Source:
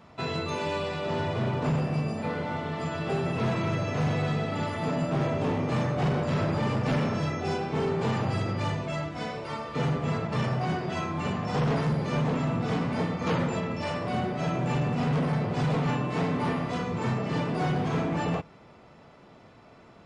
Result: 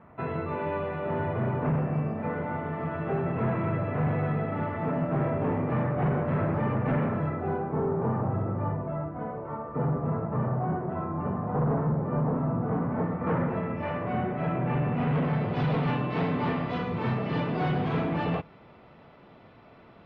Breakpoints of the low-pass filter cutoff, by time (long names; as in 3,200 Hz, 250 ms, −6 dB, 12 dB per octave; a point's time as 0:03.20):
low-pass filter 24 dB per octave
0:07.06 2,000 Hz
0:07.88 1,300 Hz
0:12.65 1,300 Hz
0:13.91 2,300 Hz
0:14.78 2,300 Hz
0:15.62 3,800 Hz